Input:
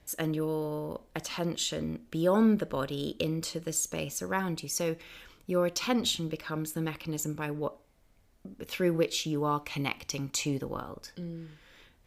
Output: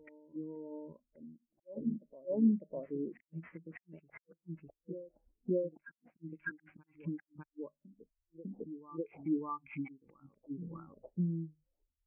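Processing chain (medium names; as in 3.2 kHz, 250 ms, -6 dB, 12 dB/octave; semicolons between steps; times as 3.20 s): spectral gate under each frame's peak -20 dB strong; hum notches 50/100/150/200/250 Hz; compression 16:1, threshold -40 dBFS, peak gain reduction 20 dB; inverted gate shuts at -32 dBFS, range -39 dB; graphic EQ with 31 bands 125 Hz -7 dB, 500 Hz -7 dB, 4 kHz -5 dB, 12.5 kHz -8 dB; sample-rate reducer 5.7 kHz, jitter 20%; LFO low-pass square 0.32 Hz 690–2200 Hz; reverse echo 601 ms -5.5 dB; spectral contrast expander 2.5:1; trim +7.5 dB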